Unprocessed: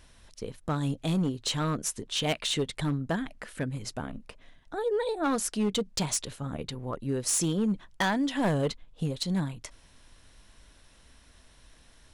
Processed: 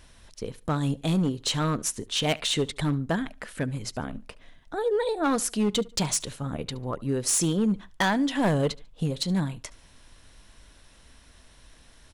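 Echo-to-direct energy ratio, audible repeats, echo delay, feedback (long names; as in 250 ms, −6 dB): −22.5 dB, 2, 72 ms, 32%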